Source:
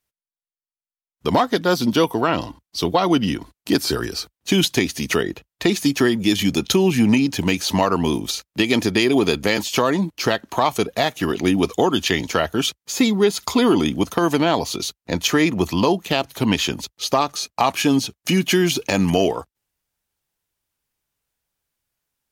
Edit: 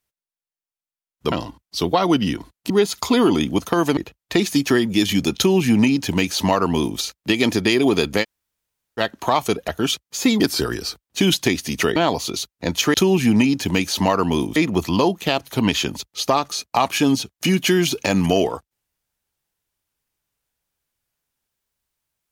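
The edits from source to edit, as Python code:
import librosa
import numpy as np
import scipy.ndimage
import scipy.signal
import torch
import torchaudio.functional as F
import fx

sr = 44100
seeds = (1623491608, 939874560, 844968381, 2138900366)

y = fx.edit(x, sr, fx.cut(start_s=1.32, length_s=1.01),
    fx.swap(start_s=3.71, length_s=1.56, other_s=13.15, other_length_s=1.27),
    fx.duplicate(start_s=6.67, length_s=1.62, to_s=15.4),
    fx.room_tone_fill(start_s=9.53, length_s=0.76, crossfade_s=0.04),
    fx.cut(start_s=10.98, length_s=1.45), tone=tone)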